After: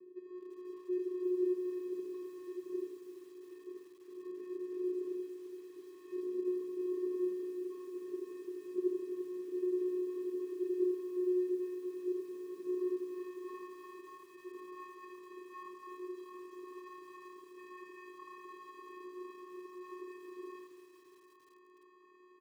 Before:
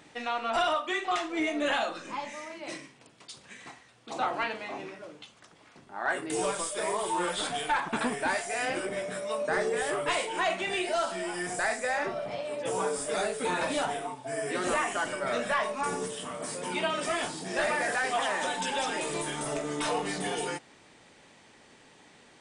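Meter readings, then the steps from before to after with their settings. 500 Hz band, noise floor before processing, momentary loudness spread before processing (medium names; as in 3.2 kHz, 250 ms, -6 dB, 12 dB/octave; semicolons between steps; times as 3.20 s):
-6.0 dB, -57 dBFS, 12 LU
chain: square wave that keeps the level; treble shelf 3.9 kHz +6 dB; reverse; compression 6:1, threshold -38 dBFS, peak gain reduction 17.5 dB; reverse; band-pass sweep 350 Hz -> 1 kHz, 12.41–13.32 s; on a send: early reflections 28 ms -11 dB, 55 ms -14 dB, 80 ms -3.5 dB; on the sum: vocoder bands 8, square 363 Hz; simulated room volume 2100 m³, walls furnished, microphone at 1.2 m; bit-crushed delay 344 ms, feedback 80%, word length 10-bit, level -14 dB; trim +4.5 dB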